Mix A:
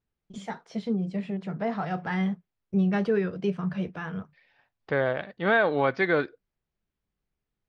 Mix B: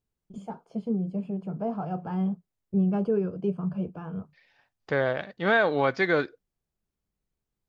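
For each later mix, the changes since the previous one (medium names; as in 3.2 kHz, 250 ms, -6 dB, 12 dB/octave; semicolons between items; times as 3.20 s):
first voice: add boxcar filter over 23 samples; master: remove low-pass 3.8 kHz 12 dB/octave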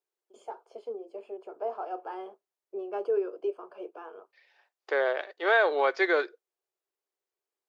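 master: add elliptic high-pass 360 Hz, stop band 50 dB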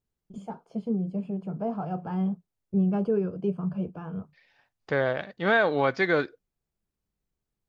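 master: remove elliptic high-pass 360 Hz, stop band 50 dB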